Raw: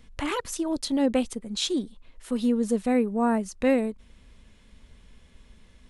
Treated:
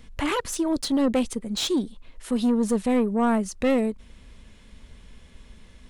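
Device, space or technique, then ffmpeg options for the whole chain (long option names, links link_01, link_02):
saturation between pre-emphasis and de-emphasis: -af "highshelf=frequency=2900:gain=9.5,asoftclip=type=tanh:threshold=-21dB,highshelf=frequency=2900:gain=-9.5,volume=5dB"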